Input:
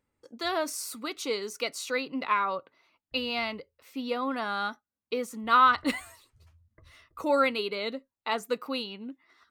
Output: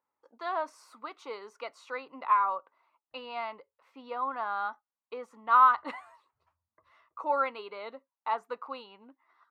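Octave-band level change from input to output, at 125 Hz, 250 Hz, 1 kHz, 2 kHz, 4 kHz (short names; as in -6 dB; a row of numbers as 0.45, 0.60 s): n/a, -15.5 dB, +1.0 dB, -6.5 dB, -15.0 dB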